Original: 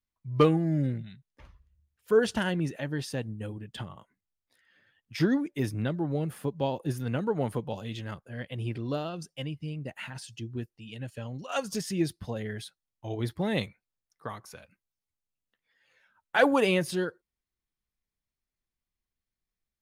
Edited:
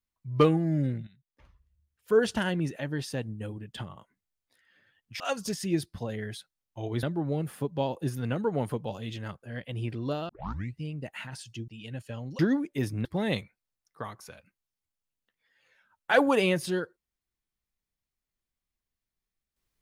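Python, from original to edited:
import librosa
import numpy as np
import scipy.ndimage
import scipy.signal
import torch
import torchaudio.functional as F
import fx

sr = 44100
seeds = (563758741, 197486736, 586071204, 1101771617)

y = fx.edit(x, sr, fx.fade_in_from(start_s=1.07, length_s=1.12, floor_db=-13.5),
    fx.swap(start_s=5.2, length_s=0.66, other_s=11.47, other_length_s=1.83),
    fx.tape_start(start_s=9.12, length_s=0.49),
    fx.cut(start_s=10.51, length_s=0.25), tone=tone)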